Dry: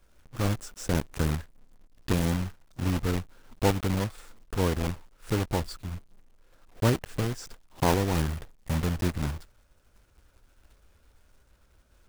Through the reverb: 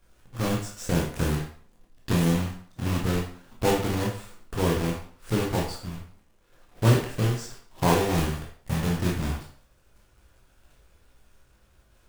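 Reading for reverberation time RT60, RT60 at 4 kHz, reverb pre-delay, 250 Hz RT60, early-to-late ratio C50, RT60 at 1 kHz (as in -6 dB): 0.50 s, 0.45 s, 15 ms, 0.50 s, 5.0 dB, 0.50 s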